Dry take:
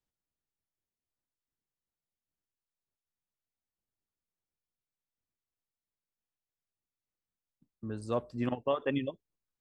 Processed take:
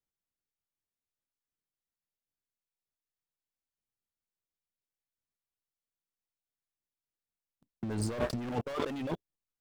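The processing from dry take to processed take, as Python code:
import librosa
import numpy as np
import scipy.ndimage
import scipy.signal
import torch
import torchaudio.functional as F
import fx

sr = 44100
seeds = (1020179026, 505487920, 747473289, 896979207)

y = fx.leveller(x, sr, passes=5)
y = fx.over_compress(y, sr, threshold_db=-31.0, ratio=-1.0)
y = F.gain(torch.from_numpy(y), -3.5).numpy()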